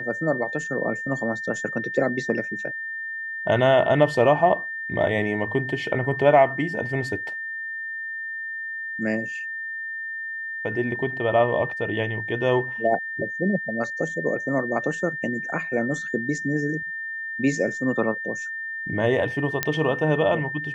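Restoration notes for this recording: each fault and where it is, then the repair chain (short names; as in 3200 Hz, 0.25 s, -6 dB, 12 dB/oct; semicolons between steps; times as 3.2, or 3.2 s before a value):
tone 1800 Hz -29 dBFS
19.63 pop -5 dBFS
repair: de-click; notch 1800 Hz, Q 30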